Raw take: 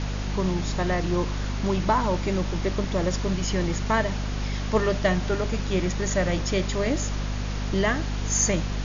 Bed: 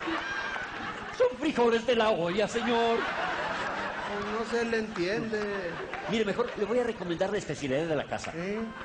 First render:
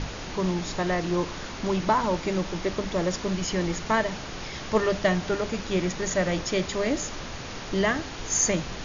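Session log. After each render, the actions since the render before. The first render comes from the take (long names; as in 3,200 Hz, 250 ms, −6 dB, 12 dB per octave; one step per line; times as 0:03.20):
hum removal 50 Hz, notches 5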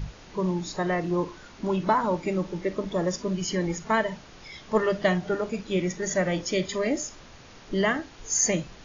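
noise reduction from a noise print 12 dB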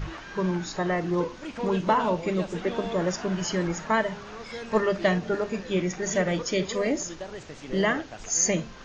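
mix in bed −9 dB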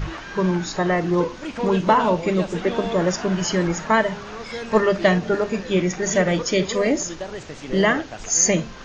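level +6 dB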